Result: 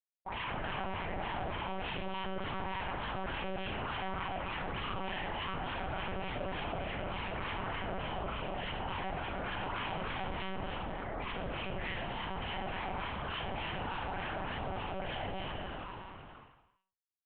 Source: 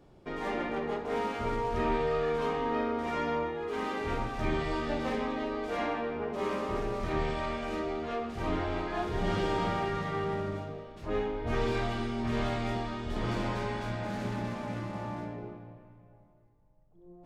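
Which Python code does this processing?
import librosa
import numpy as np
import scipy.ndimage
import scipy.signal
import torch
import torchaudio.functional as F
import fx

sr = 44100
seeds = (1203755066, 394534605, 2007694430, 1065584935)

p1 = fx.peak_eq(x, sr, hz=360.0, db=-4.5, octaves=1.7)
p2 = fx.hum_notches(p1, sr, base_hz=50, count=10)
p3 = fx.schmitt(p2, sr, flips_db=-42.5)
p4 = fx.chopper(p3, sr, hz=6.2, depth_pct=60, duty_pct=80)
p5 = fx.wah_lfo(p4, sr, hz=3.4, low_hz=470.0, high_hz=3100.0, q=9.2)
p6 = fx.doubler(p5, sr, ms=18.0, db=-9.0)
p7 = p6 + fx.room_early_taps(p6, sr, ms=(30, 56), db=(-5.5, -4.5), dry=0)
p8 = fx.rev_schroeder(p7, sr, rt60_s=0.98, comb_ms=31, drr_db=-5.5)
p9 = fx.lpc_monotone(p8, sr, seeds[0], pitch_hz=190.0, order=8)
y = fx.env_flatten(p9, sr, amount_pct=70)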